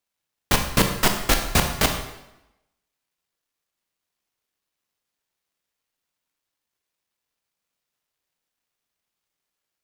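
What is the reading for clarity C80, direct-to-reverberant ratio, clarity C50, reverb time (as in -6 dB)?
9.5 dB, 4.0 dB, 7.0 dB, 0.90 s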